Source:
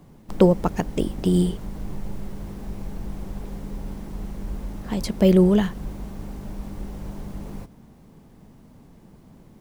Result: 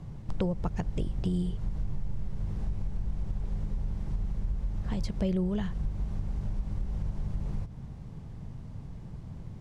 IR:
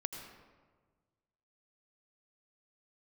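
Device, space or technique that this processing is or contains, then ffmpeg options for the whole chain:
jukebox: -af "lowpass=7100,lowshelf=f=170:t=q:w=1.5:g=10.5,acompressor=threshold=0.0355:ratio=4"

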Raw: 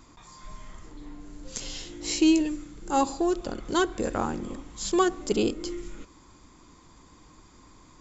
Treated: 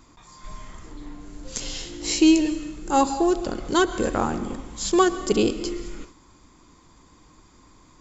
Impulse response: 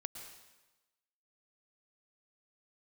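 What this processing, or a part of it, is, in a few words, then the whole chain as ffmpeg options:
keyed gated reverb: -filter_complex "[0:a]asplit=3[s0][s1][s2];[1:a]atrim=start_sample=2205[s3];[s1][s3]afir=irnorm=-1:irlink=0[s4];[s2]apad=whole_len=352874[s5];[s4][s5]sidechaingate=range=0.0224:threshold=0.00501:ratio=16:detection=peak,volume=1[s6];[s0][s6]amix=inputs=2:normalize=0"

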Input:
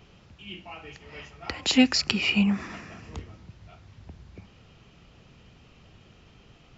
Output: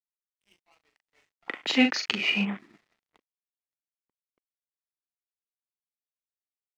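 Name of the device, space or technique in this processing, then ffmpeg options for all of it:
pocket radio on a weak battery: -filter_complex "[0:a]highpass=280,lowpass=4000,aeval=exprs='sgn(val(0))*max(abs(val(0))-0.0075,0)':c=same,equalizer=f=2000:t=o:w=0.26:g=5.5,afwtdn=0.01,asplit=3[s0][s1][s2];[s0]afade=t=out:st=0.91:d=0.02[s3];[s1]asplit=2[s4][s5];[s5]adelay=40,volume=0.501[s6];[s4][s6]amix=inputs=2:normalize=0,afade=t=in:st=0.91:d=0.02,afade=t=out:st=2.44:d=0.02[s7];[s2]afade=t=in:st=2.44:d=0.02[s8];[s3][s7][s8]amix=inputs=3:normalize=0"

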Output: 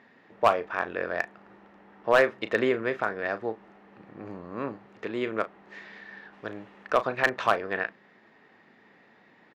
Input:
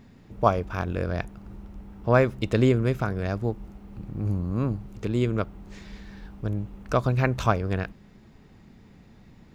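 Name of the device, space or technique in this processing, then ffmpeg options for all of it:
megaphone: -filter_complex "[0:a]highpass=470,lowpass=2900,equalizer=f=1800:t=o:w=0.23:g=9.5,asoftclip=type=hard:threshold=0.2,asplit=2[s0][s1];[s1]adelay=36,volume=0.237[s2];[s0][s2]amix=inputs=2:normalize=0,asplit=3[s3][s4][s5];[s3]afade=t=out:st=6.32:d=0.02[s6];[s4]highshelf=f=2300:g=9,afade=t=in:st=6.32:d=0.02,afade=t=out:st=6.86:d=0.02[s7];[s5]afade=t=in:st=6.86:d=0.02[s8];[s6][s7][s8]amix=inputs=3:normalize=0,volume=1.33"

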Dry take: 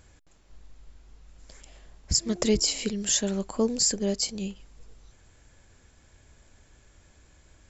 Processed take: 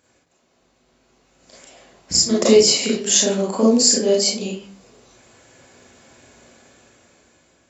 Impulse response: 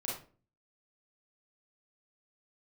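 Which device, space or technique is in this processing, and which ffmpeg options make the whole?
far laptop microphone: -filter_complex "[1:a]atrim=start_sample=2205[s0];[0:a][s0]afir=irnorm=-1:irlink=0,highpass=200,dynaudnorm=f=420:g=7:m=3.98"

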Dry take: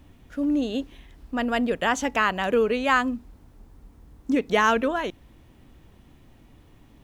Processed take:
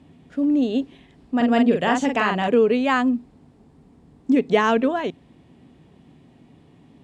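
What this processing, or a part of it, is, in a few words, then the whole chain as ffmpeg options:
car door speaker: -filter_complex "[0:a]asettb=1/sr,asplit=3[s0][s1][s2];[s0]atrim=end=1.364[s3];[s1]atrim=start=1.36:end=2.48,asetpts=PTS-STARTPTS,afade=t=in:d=0.004:c=qsin,afade=t=out:st=1.116:d=0.004:c=qsin,asplit=2[s4][s5];[s5]adelay=43,volume=0.631[s6];[s4][s6]amix=inputs=2:normalize=0,atrim=end_sample=49392[s7];[s2]atrim=start=2.476[s8];[s3][s7]acrossfade=d=0.004:c1=hsin:c2=qsin[s9];[s9][s8]acrossfade=d=0.004:c1=qsin:c2=hsin,highpass=100,equalizer=f=160:t=q:w=4:g=10,equalizer=f=250:t=q:w=4:g=7,equalizer=f=410:t=q:w=4:g=6,equalizer=f=720:t=q:w=4:g=4,equalizer=f=1400:t=q:w=4:g=-4,equalizer=f=6100:t=q:w=4:g=-6,lowpass=f=8800:w=0.5412,lowpass=f=8800:w=1.3066"

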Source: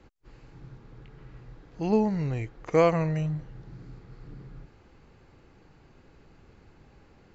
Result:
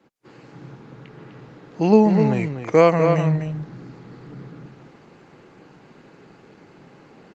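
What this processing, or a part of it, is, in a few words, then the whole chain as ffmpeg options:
video call: -filter_complex "[0:a]asplit=3[s0][s1][s2];[s0]afade=t=out:st=2.92:d=0.02[s3];[s1]highpass=f=71:p=1,afade=t=in:st=2.92:d=0.02,afade=t=out:st=3.54:d=0.02[s4];[s2]afade=t=in:st=3.54:d=0.02[s5];[s3][s4][s5]amix=inputs=3:normalize=0,highpass=f=150:w=0.5412,highpass=f=150:w=1.3066,asplit=2[s6][s7];[s7]adelay=250.7,volume=0.447,highshelf=f=4000:g=-5.64[s8];[s6][s8]amix=inputs=2:normalize=0,dynaudnorm=f=120:g=3:m=3.76" -ar 48000 -c:a libopus -b:a 32k

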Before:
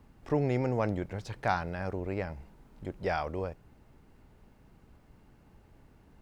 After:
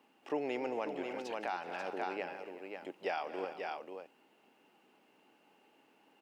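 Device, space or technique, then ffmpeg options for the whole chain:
laptop speaker: -af "highpass=f=270:w=0.5412,highpass=f=270:w=1.3066,equalizer=f=820:t=o:w=0.23:g=5.5,equalizer=f=2800:t=o:w=0.41:g=12,aecho=1:1:155|226|284|372|538:0.1|0.141|0.126|0.126|0.473,alimiter=limit=0.0944:level=0:latency=1:release=226,volume=0.596"

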